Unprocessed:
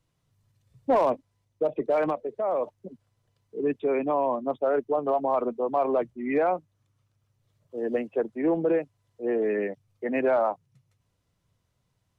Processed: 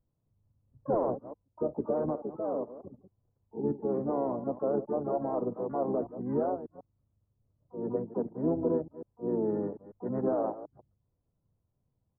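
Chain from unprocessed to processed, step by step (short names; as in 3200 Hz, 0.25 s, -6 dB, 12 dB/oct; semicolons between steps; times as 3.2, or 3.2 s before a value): reverse delay 0.148 s, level -13.5 dB; harmoniser -12 st -8 dB, -4 st -7 dB, +12 st -14 dB; Gaussian blur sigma 9.1 samples; gain -5 dB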